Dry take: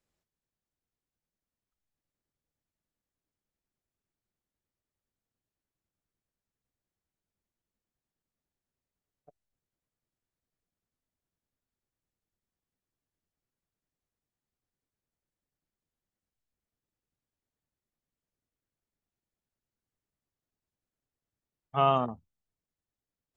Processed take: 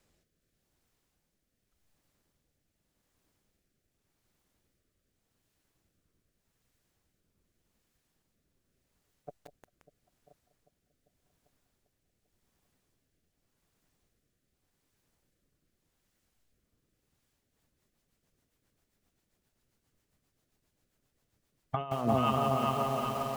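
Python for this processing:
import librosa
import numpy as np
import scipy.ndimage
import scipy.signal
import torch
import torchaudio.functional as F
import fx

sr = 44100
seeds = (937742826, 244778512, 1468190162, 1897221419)

p1 = x + fx.echo_alternate(x, sr, ms=198, hz=920.0, feedback_pct=81, wet_db=-14.0, dry=0)
p2 = fx.rotary_switch(p1, sr, hz=0.85, then_hz=7.5, switch_at_s=17.14)
p3 = fx.over_compress(p2, sr, threshold_db=-40.0, ratio=-1.0)
p4 = p3 + 10.0 ** (-17.5 / 20.0) * np.pad(p3, (int(1026 * sr / 1000.0), 0))[:len(p3)]
p5 = fx.echo_crushed(p4, sr, ms=175, feedback_pct=80, bits=9, wet_db=-5.0)
y = p5 * librosa.db_to_amplitude(9.0)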